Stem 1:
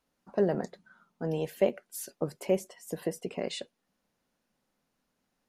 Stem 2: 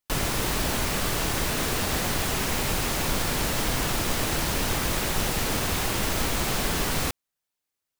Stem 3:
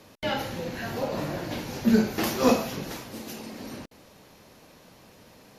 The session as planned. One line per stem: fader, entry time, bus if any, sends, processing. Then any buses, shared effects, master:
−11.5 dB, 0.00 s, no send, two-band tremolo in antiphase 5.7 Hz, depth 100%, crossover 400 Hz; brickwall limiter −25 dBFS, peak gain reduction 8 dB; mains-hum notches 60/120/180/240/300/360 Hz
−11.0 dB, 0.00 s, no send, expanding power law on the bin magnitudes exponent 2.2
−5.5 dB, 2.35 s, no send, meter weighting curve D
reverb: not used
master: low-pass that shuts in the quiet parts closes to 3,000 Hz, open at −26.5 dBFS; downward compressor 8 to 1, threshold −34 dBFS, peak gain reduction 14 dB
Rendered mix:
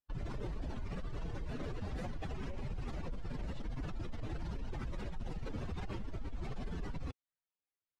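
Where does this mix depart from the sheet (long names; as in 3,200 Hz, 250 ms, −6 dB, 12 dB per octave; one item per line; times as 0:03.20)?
stem 1 −11.5 dB → −18.0 dB
stem 3: muted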